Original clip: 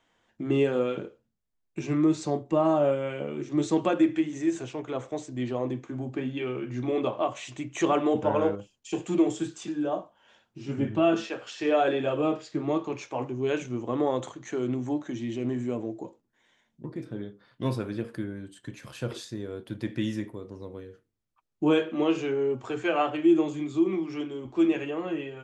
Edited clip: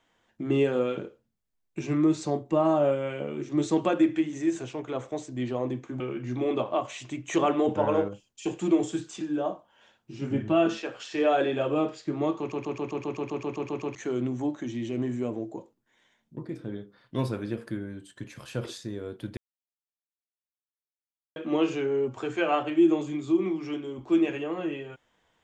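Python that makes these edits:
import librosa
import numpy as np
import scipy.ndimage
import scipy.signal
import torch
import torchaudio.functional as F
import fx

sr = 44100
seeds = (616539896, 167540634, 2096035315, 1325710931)

y = fx.edit(x, sr, fx.cut(start_s=6.0, length_s=0.47),
    fx.stutter_over(start_s=12.86, slice_s=0.13, count=12),
    fx.silence(start_s=19.84, length_s=1.99), tone=tone)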